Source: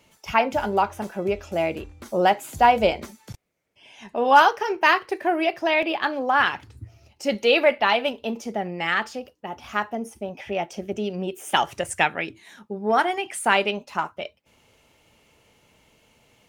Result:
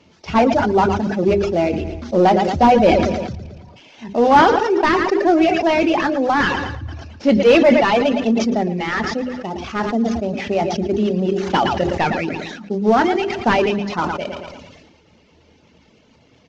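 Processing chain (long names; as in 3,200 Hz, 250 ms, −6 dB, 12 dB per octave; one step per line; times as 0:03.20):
variable-slope delta modulation 32 kbit/s
parametric band 250 Hz +12 dB 2 octaves
on a send: repeating echo 113 ms, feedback 51%, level −9 dB
on the sum: coupled-rooms reverb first 0.72 s, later 3 s, from −20 dB, DRR 15.5 dB
in parallel at −8 dB: hard clipping −11.5 dBFS, distortion −13 dB
on the sum: reverb reduction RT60 0.8 s
parametric band 78 Hz +13.5 dB 0.26 octaves
mains-hum notches 50/100/150/200/250/300/350/400 Hz
level that may fall only so fast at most 38 dB per second
level −1 dB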